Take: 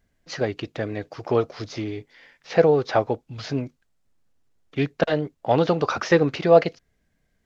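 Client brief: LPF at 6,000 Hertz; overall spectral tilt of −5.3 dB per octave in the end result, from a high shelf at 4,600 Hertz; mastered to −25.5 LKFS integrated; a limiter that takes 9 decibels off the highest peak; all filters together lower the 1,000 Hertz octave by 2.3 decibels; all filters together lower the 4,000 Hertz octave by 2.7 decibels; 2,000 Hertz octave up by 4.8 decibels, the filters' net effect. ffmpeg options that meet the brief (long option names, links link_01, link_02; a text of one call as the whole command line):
ffmpeg -i in.wav -af "lowpass=6000,equalizer=frequency=1000:width_type=o:gain=-5.5,equalizer=frequency=2000:width_type=o:gain=8.5,equalizer=frequency=4000:width_type=o:gain=-8,highshelf=frequency=4600:gain=4,volume=1dB,alimiter=limit=-11dB:level=0:latency=1" out.wav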